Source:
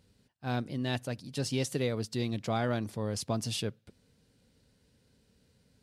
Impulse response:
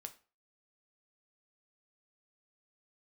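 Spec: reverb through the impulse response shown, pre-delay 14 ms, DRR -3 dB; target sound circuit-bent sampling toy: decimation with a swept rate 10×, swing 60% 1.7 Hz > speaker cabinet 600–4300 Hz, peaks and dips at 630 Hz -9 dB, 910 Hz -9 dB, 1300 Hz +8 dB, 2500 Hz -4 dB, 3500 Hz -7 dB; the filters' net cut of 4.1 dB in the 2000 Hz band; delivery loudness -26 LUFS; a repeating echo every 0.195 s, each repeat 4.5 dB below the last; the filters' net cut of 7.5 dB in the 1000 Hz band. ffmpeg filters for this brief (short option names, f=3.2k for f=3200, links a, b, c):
-filter_complex "[0:a]equalizer=f=1k:t=o:g=-6,equalizer=f=2k:t=o:g=-3.5,aecho=1:1:195|390|585|780|975|1170|1365|1560|1755:0.596|0.357|0.214|0.129|0.0772|0.0463|0.0278|0.0167|0.01,asplit=2[a][b];[1:a]atrim=start_sample=2205,adelay=14[c];[b][c]afir=irnorm=-1:irlink=0,volume=8dB[d];[a][d]amix=inputs=2:normalize=0,acrusher=samples=10:mix=1:aa=0.000001:lfo=1:lforange=6:lforate=1.7,highpass=600,equalizer=f=630:t=q:w=4:g=-9,equalizer=f=910:t=q:w=4:g=-9,equalizer=f=1.3k:t=q:w=4:g=8,equalizer=f=2.5k:t=q:w=4:g=-4,equalizer=f=3.5k:t=q:w=4:g=-7,lowpass=f=4.3k:w=0.5412,lowpass=f=4.3k:w=1.3066,volume=11dB"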